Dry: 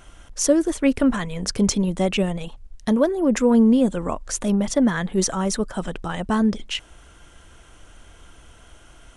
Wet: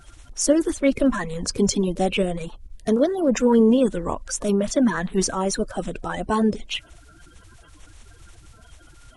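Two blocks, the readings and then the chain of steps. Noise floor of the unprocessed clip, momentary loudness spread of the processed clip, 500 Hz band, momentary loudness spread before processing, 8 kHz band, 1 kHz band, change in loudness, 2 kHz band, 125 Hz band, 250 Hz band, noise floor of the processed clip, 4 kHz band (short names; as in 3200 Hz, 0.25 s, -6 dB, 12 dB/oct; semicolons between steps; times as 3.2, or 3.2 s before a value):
-49 dBFS, 12 LU, +1.5 dB, 13 LU, -0.5 dB, +1.5 dB, -0.5 dB, -0.5 dB, -2.5 dB, -2.0 dB, -50 dBFS, -1.0 dB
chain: bin magnitudes rounded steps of 30 dB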